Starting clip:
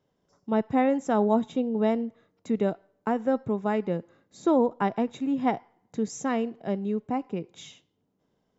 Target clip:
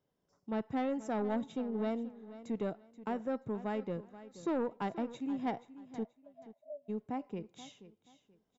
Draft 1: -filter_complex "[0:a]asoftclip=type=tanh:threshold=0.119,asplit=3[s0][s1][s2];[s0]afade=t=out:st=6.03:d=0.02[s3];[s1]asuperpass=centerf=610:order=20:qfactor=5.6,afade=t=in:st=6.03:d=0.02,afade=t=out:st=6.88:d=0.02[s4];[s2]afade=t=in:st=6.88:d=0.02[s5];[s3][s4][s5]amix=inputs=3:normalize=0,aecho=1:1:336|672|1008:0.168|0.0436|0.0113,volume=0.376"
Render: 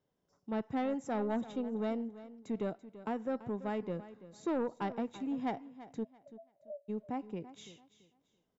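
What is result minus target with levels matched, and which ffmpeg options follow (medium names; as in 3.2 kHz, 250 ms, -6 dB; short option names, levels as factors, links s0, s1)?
echo 144 ms early
-filter_complex "[0:a]asoftclip=type=tanh:threshold=0.119,asplit=3[s0][s1][s2];[s0]afade=t=out:st=6.03:d=0.02[s3];[s1]asuperpass=centerf=610:order=20:qfactor=5.6,afade=t=in:st=6.03:d=0.02,afade=t=out:st=6.88:d=0.02[s4];[s2]afade=t=in:st=6.88:d=0.02[s5];[s3][s4][s5]amix=inputs=3:normalize=0,aecho=1:1:480|960|1440:0.168|0.0436|0.0113,volume=0.376"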